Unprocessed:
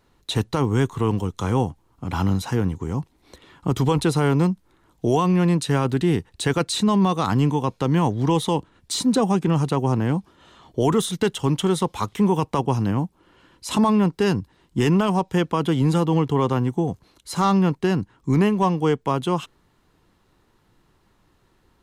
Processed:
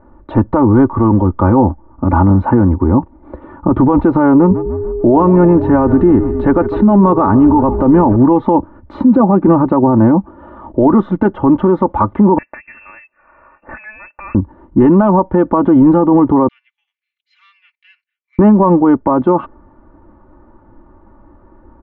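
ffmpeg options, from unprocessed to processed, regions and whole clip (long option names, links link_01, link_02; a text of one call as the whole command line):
ffmpeg -i in.wav -filter_complex "[0:a]asettb=1/sr,asplit=3[link_01][link_02][link_03];[link_01]atrim=end=4.354[link_04];[link_02]atrim=start=4.35:end=8.16,asetpts=PTS-STARTPTS,afade=type=in:duration=0.004:curve=qsin,afade=type=out:start_time=3.806:duration=0.004:curve=qsin,asplit=6[link_05][link_06][link_07][link_08][link_09][link_10];[link_06]adelay=149,afreqshift=-45,volume=-17dB[link_11];[link_07]adelay=298,afreqshift=-90,volume=-21.7dB[link_12];[link_08]adelay=447,afreqshift=-135,volume=-26.5dB[link_13];[link_09]adelay=596,afreqshift=-180,volume=-31.2dB[link_14];[link_10]adelay=745,afreqshift=-225,volume=-35.9dB[link_15];[link_05][link_11][link_12][link_13][link_14][link_15]amix=inputs=6:normalize=0,atrim=end_sample=168021,aeval=exprs='val(0)+0.0316*sin(2*PI*410*n/s)':channel_layout=same[link_16];[link_03]atrim=start=8.156[link_17];[link_04][link_16]acrossfade=duration=0.004:curve1=hsin:curve2=qsin[link_18];[link_18][link_17]acrossfade=duration=0.004:curve1=qsin:curve2=hsin,asettb=1/sr,asplit=3[link_19][link_20][link_21];[link_19]atrim=end=12.384[link_22];[link_20]atrim=start=12.38:end=14.35,asetpts=PTS-STARTPTS,afade=type=in:duration=0.004:curve=qsin,afade=type=out:start_time=1.966:duration=0.004:curve=qsin,lowpass=frequency=2400:width_type=q:width=0.5098,lowpass=frequency=2400:width_type=q:width=0.6013,lowpass=frequency=2400:width_type=q:width=0.9,lowpass=frequency=2400:width_type=q:width=2.563,afreqshift=-2800,acompressor=threshold=-38dB:ratio=2.5:attack=3.2:release=140:knee=1:detection=peak[link_23];[link_21]atrim=start=14.346[link_24];[link_22][link_23]acrossfade=duration=0.004:curve1=hsin:curve2=qsin[link_25];[link_25][link_24]acrossfade=duration=0.004:curve1=qsin:curve2=hsin,asettb=1/sr,asplit=3[link_26][link_27][link_28];[link_26]atrim=end=16.484[link_29];[link_27]atrim=start=16.48:end=18.39,asetpts=PTS-STARTPTS,afade=type=in:duration=0.004:curve=qsin,afade=type=out:start_time=1.906:duration=0.004:curve=qsin,agate=range=-33dB:threshold=-54dB:ratio=3:release=100:detection=peak,asuperpass=centerf=4100:order=12:qfactor=0.84[link_30];[link_28]atrim=start=18.386[link_31];[link_29][link_30]acrossfade=duration=0.004:curve1=hsin:curve2=qsin[link_32];[link_32][link_31]acrossfade=duration=0.004:curve1=qsin:curve2=hsin,lowpass=frequency=1200:width=0.5412,lowpass=frequency=1200:width=1.3066,aecho=1:1:3.4:0.82,alimiter=level_in=17dB:limit=-1dB:release=50:level=0:latency=1,volume=-1dB" out.wav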